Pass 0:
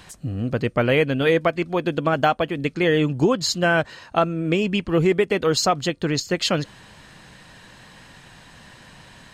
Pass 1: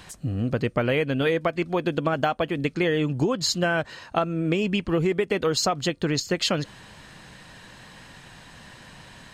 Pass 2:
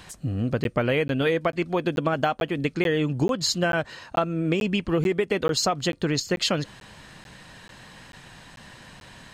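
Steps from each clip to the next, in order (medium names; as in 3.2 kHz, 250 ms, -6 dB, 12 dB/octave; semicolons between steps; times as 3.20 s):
compression, threshold -19 dBFS, peak gain reduction 6.5 dB
crackling interface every 0.44 s, samples 512, zero, from 0.64 s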